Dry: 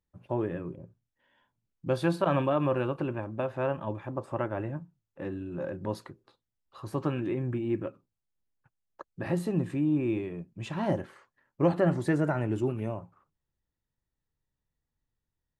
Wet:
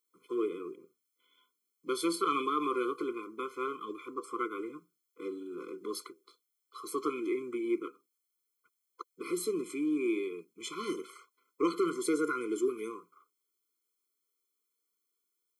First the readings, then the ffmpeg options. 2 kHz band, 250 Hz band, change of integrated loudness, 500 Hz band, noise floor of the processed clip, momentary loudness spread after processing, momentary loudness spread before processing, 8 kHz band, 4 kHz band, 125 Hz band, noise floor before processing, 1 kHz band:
-2.5 dB, -4.0 dB, -4.0 dB, -3.5 dB, -83 dBFS, 15 LU, 14 LU, n/a, +4.0 dB, -26.5 dB, under -85 dBFS, -0.5 dB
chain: -af "crystalizer=i=2.5:c=0,highpass=f=360:w=0.5412,highpass=f=360:w=1.3066,afftfilt=real='re*eq(mod(floor(b*sr/1024/500),2),0)':imag='im*eq(mod(floor(b*sr/1024/500),2),0)':win_size=1024:overlap=0.75,volume=3dB"

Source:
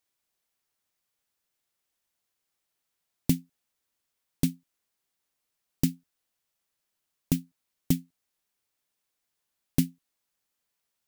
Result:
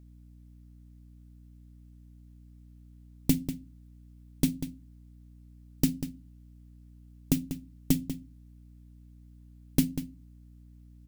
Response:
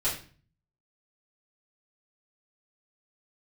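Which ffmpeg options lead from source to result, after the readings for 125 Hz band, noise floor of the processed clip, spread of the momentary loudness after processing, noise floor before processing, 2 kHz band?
-1.0 dB, -53 dBFS, 12 LU, -82 dBFS, +1.0 dB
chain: -filter_complex "[0:a]asplit=2[a][b];[b]adelay=192.4,volume=-10dB,highshelf=f=4k:g=-4.33[c];[a][c]amix=inputs=2:normalize=0,asplit=2[d][e];[1:a]atrim=start_sample=2205,asetrate=79380,aresample=44100[f];[e][f]afir=irnorm=-1:irlink=0,volume=-14dB[g];[d][g]amix=inputs=2:normalize=0,aeval=exprs='val(0)+0.00282*(sin(2*PI*60*n/s)+sin(2*PI*2*60*n/s)/2+sin(2*PI*3*60*n/s)/3+sin(2*PI*4*60*n/s)/4+sin(2*PI*5*60*n/s)/5)':c=same"

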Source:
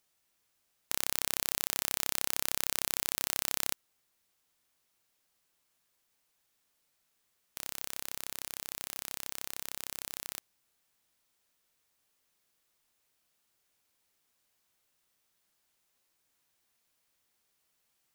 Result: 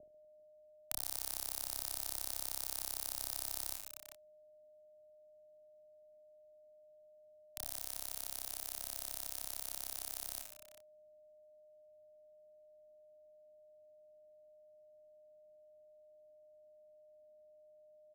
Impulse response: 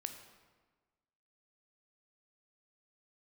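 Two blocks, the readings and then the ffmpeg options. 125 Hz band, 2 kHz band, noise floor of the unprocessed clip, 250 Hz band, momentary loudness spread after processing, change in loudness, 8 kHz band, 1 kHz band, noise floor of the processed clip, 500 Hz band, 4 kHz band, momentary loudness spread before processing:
-8.0 dB, -14.5 dB, -77 dBFS, -11.0 dB, 8 LU, -6.5 dB, -6.0 dB, -8.5 dB, -63 dBFS, -3.5 dB, -8.5 dB, 9 LU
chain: -filter_complex "[0:a]aeval=exprs='val(0)+0.00631*sin(2*PI*610*n/s)':c=same,asplit=2[a][b];[b]adelay=27,volume=-9dB[c];[a][c]amix=inputs=2:normalize=0,acrossover=split=410[d][e];[e]acrusher=bits=5:mix=0:aa=0.000001[f];[d][f]amix=inputs=2:normalize=0,equalizer=f=740:t=o:w=0.51:g=11,aecho=1:1:30|75|142.5|243.8|395.6:0.631|0.398|0.251|0.158|0.1,acrossover=split=97|5100[g][h][i];[g]acompressor=threshold=-53dB:ratio=4[j];[h]acompressor=threshold=-50dB:ratio=4[k];[i]acompressor=threshold=-33dB:ratio=4[l];[j][k][l]amix=inputs=3:normalize=0,volume=-1.5dB"

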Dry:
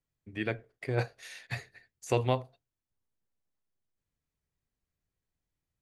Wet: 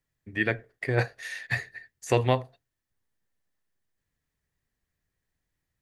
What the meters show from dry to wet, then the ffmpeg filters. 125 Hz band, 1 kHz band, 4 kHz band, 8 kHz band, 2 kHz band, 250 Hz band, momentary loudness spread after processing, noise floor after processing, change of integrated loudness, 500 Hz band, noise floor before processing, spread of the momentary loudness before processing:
+4.5 dB, +4.5 dB, +5.0 dB, +4.5 dB, +10.0 dB, +4.5 dB, 15 LU, -84 dBFS, +5.5 dB, +4.5 dB, under -85 dBFS, 17 LU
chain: -af "equalizer=f=1.8k:t=o:w=0.28:g=10,volume=4.5dB"

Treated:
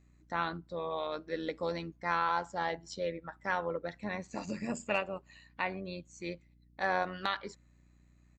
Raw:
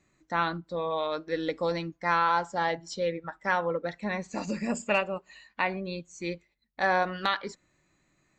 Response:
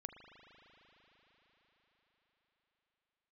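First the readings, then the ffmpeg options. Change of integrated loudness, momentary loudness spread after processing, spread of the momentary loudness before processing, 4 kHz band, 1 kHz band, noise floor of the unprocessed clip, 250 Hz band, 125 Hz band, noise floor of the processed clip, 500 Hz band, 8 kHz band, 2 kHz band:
-6.0 dB, 11 LU, 11 LU, -6.0 dB, -6.0 dB, -71 dBFS, -6.0 dB, -6.0 dB, -64 dBFS, -6.0 dB, -6.0 dB, -6.0 dB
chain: -af "aeval=exprs='val(0)+0.00158*(sin(2*PI*60*n/s)+sin(2*PI*2*60*n/s)/2+sin(2*PI*3*60*n/s)/3+sin(2*PI*4*60*n/s)/4+sin(2*PI*5*60*n/s)/5)':c=same,tremolo=f=90:d=0.462,aresample=32000,aresample=44100,volume=-4dB"

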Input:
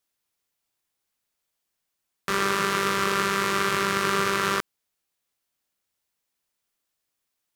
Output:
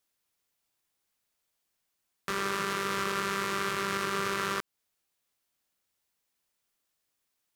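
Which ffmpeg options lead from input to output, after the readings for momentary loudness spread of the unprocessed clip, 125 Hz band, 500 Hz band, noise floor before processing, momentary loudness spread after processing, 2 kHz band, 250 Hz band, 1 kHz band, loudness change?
6 LU, -7.0 dB, -7.0 dB, -81 dBFS, 6 LU, -7.0 dB, -7.0 dB, -7.0 dB, -7.0 dB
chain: -af "alimiter=limit=-16dB:level=0:latency=1:release=197"

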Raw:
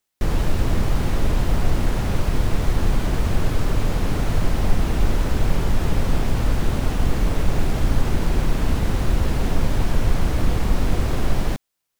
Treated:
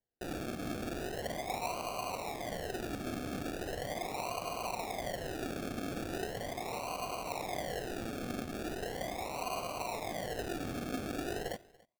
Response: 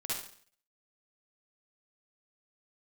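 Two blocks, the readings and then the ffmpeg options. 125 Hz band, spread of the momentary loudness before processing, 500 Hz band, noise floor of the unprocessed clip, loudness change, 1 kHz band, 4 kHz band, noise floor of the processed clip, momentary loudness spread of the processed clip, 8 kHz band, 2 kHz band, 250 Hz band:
-24.5 dB, 1 LU, -8.5 dB, -78 dBFS, -15.0 dB, -7.0 dB, -10.0 dB, -57 dBFS, 2 LU, -8.5 dB, -10.0 dB, -14.0 dB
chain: -filter_complex "[0:a]asplit=3[a][b][c];[a]bandpass=f=730:t=q:w=8,volume=0dB[d];[b]bandpass=f=1.09k:t=q:w=8,volume=-6dB[e];[c]bandpass=f=2.44k:t=q:w=8,volume=-9dB[f];[d][e][f]amix=inputs=3:normalize=0,asplit=2[g][h];[h]lowshelf=f=300:g=-9.5[i];[1:a]atrim=start_sample=2205,afade=t=out:st=0.35:d=0.01,atrim=end_sample=15876[j];[i][j]afir=irnorm=-1:irlink=0,volume=-22.5dB[k];[g][k]amix=inputs=2:normalize=0,acrusher=samples=35:mix=1:aa=0.000001:lfo=1:lforange=21:lforate=0.39,aecho=1:1:286:0.0631,volume=2dB"

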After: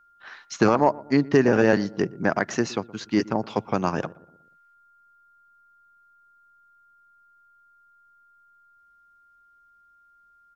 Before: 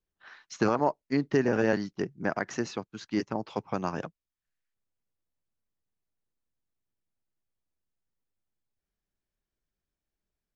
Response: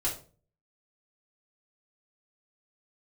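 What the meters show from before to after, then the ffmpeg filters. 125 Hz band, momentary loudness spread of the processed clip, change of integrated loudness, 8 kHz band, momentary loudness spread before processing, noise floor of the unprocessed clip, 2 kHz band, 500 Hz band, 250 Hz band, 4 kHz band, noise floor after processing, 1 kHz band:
+7.0 dB, 10 LU, +7.0 dB, n/a, 10 LU, under -85 dBFS, +7.0 dB, +7.0 dB, +7.0 dB, +7.0 dB, -59 dBFS, +7.0 dB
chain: -filter_complex "[0:a]acontrast=89,aeval=exprs='val(0)+0.00158*sin(2*PI*1400*n/s)':c=same,asplit=2[a][b];[b]adelay=119,lowpass=f=870:p=1,volume=-19.5dB,asplit=2[c][d];[d]adelay=119,lowpass=f=870:p=1,volume=0.51,asplit=2[e][f];[f]adelay=119,lowpass=f=870:p=1,volume=0.51,asplit=2[g][h];[h]adelay=119,lowpass=f=870:p=1,volume=0.51[i];[a][c][e][g][i]amix=inputs=5:normalize=0"

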